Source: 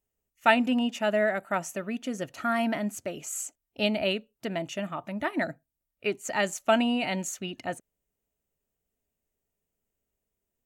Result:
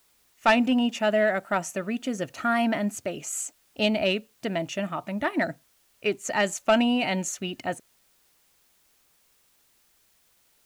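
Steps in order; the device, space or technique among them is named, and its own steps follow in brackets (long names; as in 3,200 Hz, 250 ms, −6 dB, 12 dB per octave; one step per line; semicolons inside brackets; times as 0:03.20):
compact cassette (soft clipping −14.5 dBFS, distortion −18 dB; low-pass filter 11,000 Hz; tape wow and flutter 24 cents; white noise bed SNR 37 dB)
level +3.5 dB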